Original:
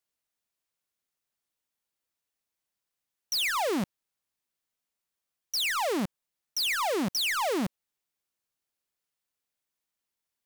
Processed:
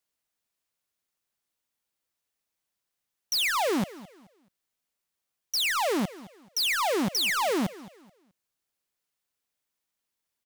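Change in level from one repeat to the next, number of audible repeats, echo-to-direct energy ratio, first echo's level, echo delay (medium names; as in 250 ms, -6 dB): -10.5 dB, 2, -18.0 dB, -18.5 dB, 215 ms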